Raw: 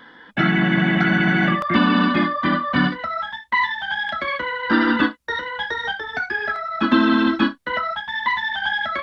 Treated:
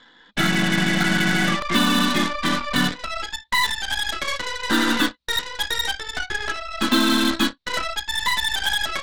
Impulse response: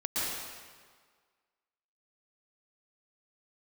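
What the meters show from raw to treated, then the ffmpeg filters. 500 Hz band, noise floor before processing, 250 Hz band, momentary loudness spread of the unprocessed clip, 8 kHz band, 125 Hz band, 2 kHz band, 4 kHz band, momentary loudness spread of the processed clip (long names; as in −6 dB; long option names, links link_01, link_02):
−3.5 dB, −47 dBFS, −3.5 dB, 8 LU, can't be measured, −3.5 dB, −2.0 dB, +6.5 dB, 8 LU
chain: -af "lowpass=frequency=4000:width_type=q:width=6.1,aeval=exprs='0.422*(cos(1*acos(clip(val(0)/0.422,-1,1)))-cos(1*PI/2))+0.0299*(cos(7*acos(clip(val(0)/0.422,-1,1)))-cos(7*PI/2))+0.0531*(cos(8*acos(clip(val(0)/0.422,-1,1)))-cos(8*PI/2))':channel_layout=same,volume=-3.5dB"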